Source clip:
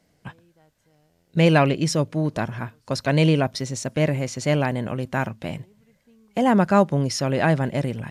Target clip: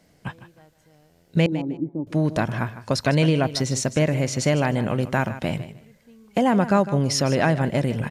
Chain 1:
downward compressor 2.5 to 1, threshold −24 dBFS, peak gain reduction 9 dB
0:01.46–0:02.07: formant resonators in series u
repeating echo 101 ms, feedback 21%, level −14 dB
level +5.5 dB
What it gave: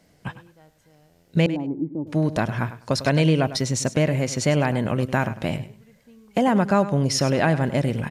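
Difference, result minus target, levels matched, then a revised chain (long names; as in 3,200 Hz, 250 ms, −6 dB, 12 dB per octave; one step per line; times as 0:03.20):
echo 53 ms early
downward compressor 2.5 to 1, threshold −24 dBFS, peak gain reduction 9 dB
0:01.46–0:02.07: formant resonators in series u
repeating echo 154 ms, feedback 21%, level −14 dB
level +5.5 dB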